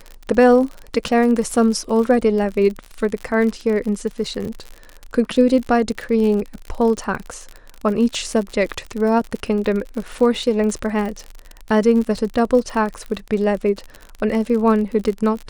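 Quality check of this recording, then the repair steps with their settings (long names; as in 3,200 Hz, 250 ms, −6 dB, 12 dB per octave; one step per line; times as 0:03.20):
surface crackle 50 per second −25 dBFS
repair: click removal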